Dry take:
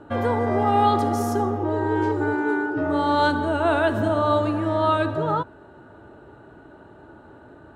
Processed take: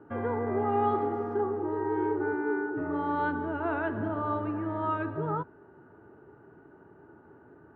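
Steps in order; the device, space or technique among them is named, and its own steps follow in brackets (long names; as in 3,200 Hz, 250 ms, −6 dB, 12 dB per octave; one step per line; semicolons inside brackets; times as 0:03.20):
bass cabinet (loudspeaker in its box 83–2,200 Hz, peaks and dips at 160 Hz +4 dB, 410 Hz +6 dB, 600 Hz −7 dB)
0:00.91–0:02.33: double-tracking delay 36 ms −7 dB
level −8.5 dB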